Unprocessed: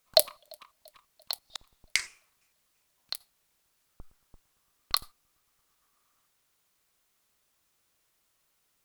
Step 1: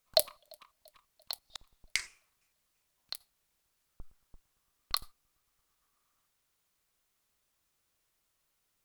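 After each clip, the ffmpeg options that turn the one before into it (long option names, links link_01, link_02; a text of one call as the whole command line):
ffmpeg -i in.wav -af "lowshelf=frequency=79:gain=7,volume=-5dB" out.wav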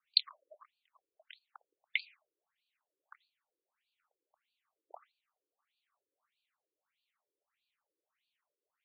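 ffmpeg -i in.wav -af "afftfilt=real='re*between(b*sr/1024,380*pow(3400/380,0.5+0.5*sin(2*PI*1.6*pts/sr))/1.41,380*pow(3400/380,0.5+0.5*sin(2*PI*1.6*pts/sr))*1.41)':imag='im*between(b*sr/1024,380*pow(3400/380,0.5+0.5*sin(2*PI*1.6*pts/sr))/1.41,380*pow(3400/380,0.5+0.5*sin(2*PI*1.6*pts/sr))*1.41)':win_size=1024:overlap=0.75,volume=1.5dB" out.wav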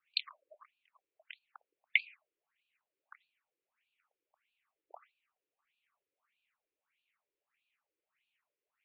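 ffmpeg -i in.wav -af "lowpass=frequency=2500:width_type=q:width=2.7,volume=-2dB" out.wav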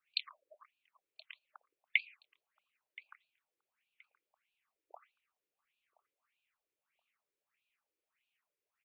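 ffmpeg -i in.wav -af "aecho=1:1:1024|2048:0.0841|0.021,volume=-2dB" out.wav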